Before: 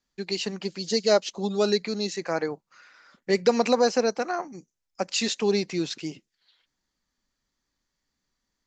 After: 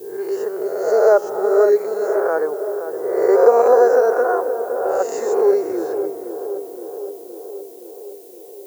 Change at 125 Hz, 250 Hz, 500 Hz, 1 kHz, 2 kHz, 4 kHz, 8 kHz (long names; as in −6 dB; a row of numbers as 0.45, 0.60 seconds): below −15 dB, +1.0 dB, +11.5 dB, +10.0 dB, +4.0 dB, below −15 dB, can't be measured